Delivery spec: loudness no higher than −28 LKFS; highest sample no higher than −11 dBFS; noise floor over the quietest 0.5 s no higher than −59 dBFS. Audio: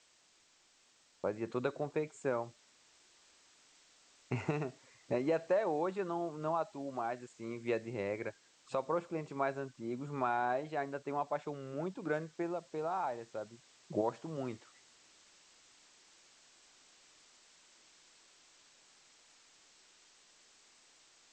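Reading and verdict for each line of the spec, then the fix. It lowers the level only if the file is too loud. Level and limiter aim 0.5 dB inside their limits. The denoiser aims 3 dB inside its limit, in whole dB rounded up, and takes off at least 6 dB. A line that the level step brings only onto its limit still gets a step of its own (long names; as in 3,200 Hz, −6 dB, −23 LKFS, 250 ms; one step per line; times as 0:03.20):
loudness −38.0 LKFS: in spec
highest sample −19.5 dBFS: in spec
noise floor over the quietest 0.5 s −69 dBFS: in spec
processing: no processing needed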